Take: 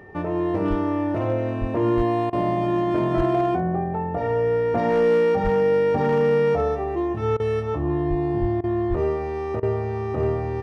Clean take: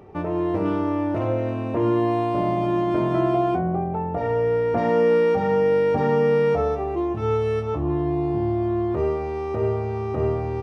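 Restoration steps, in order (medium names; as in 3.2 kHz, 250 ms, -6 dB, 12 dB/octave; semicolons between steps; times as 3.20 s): clip repair -13.5 dBFS; band-stop 1.8 kHz, Q 30; de-plosive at 0.69/1.60/1.96/3.16/5.43/8.09/8.40/8.89 s; interpolate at 2.30/7.37/8.61/9.60 s, 27 ms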